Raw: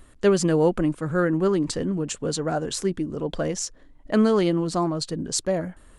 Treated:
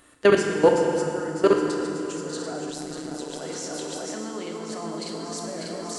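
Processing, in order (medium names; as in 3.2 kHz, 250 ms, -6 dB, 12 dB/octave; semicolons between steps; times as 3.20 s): backward echo that repeats 297 ms, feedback 81%, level -8 dB; high-pass 500 Hz 6 dB/octave; level held to a coarse grid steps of 22 dB; FDN reverb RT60 2.6 s, low-frequency decay 1.4×, high-frequency decay 0.85×, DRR 1 dB; 2.70–3.42 s: AM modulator 140 Hz, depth 45%; trim +8.5 dB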